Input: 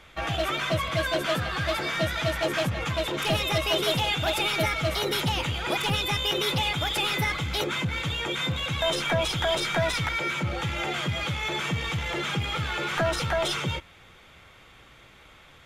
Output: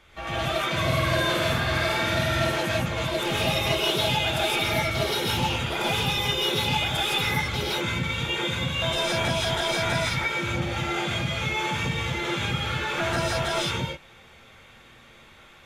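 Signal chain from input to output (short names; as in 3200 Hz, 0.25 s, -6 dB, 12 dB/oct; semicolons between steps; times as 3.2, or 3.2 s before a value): 0.68–2.4 flutter echo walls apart 8.3 m, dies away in 0.71 s; non-linear reverb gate 0.19 s rising, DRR -6 dB; gain -5.5 dB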